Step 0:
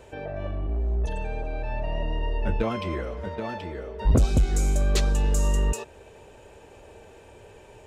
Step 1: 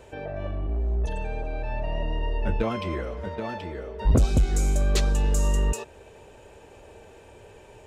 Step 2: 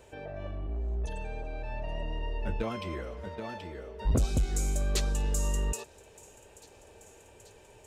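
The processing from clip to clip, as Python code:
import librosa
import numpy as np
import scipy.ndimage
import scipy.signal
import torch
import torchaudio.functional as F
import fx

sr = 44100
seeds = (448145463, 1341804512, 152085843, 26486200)

y1 = x
y2 = fx.high_shelf(y1, sr, hz=4400.0, db=7.0)
y2 = fx.echo_wet_highpass(y2, sr, ms=833, feedback_pct=73, hz=4100.0, wet_db=-19)
y2 = y2 * librosa.db_to_amplitude(-7.0)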